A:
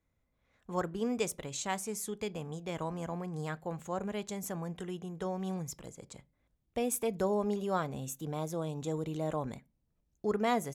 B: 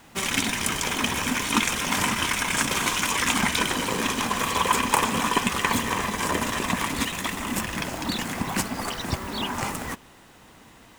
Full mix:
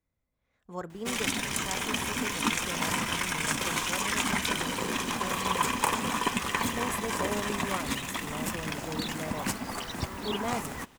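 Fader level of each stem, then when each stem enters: −4.0, −5.5 decibels; 0.00, 0.90 seconds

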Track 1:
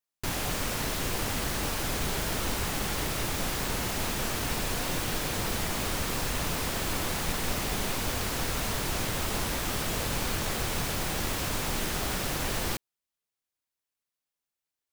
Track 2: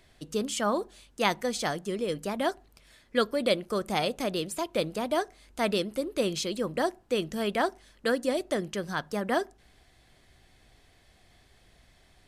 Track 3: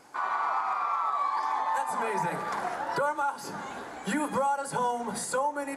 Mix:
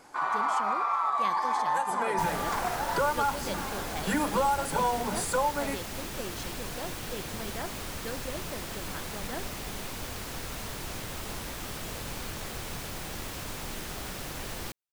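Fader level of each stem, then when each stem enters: −7.0, −12.0, +1.0 decibels; 1.95, 0.00, 0.00 seconds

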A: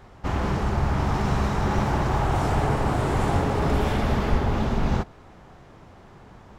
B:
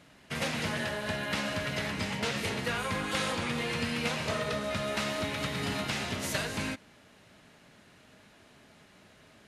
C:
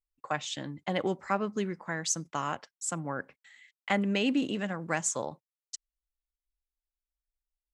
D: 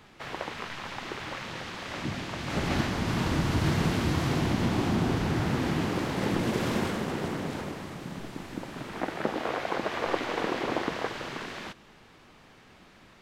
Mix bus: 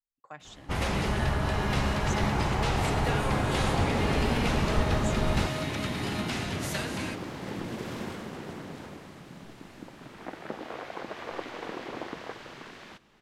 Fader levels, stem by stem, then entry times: −5.0, −1.5, −13.0, −8.0 decibels; 0.45, 0.40, 0.00, 1.25 seconds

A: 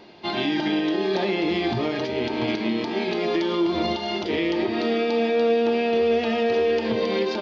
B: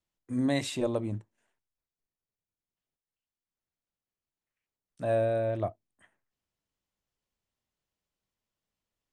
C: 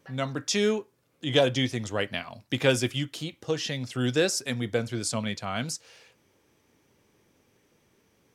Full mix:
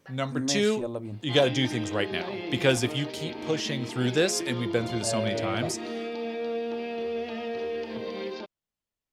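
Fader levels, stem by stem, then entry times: −11.0, −3.5, 0.0 decibels; 1.05, 0.00, 0.00 seconds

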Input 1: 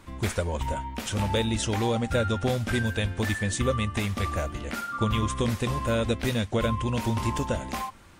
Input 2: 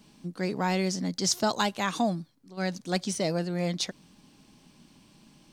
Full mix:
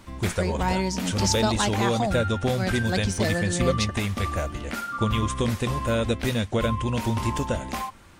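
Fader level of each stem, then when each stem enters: +1.5, +1.0 decibels; 0.00, 0.00 seconds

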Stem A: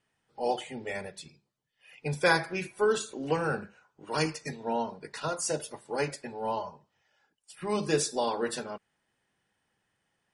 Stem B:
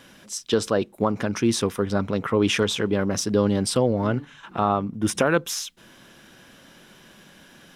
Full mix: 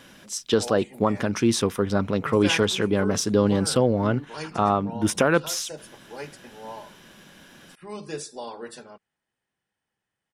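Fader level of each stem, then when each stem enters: −7.0, +0.5 decibels; 0.20, 0.00 seconds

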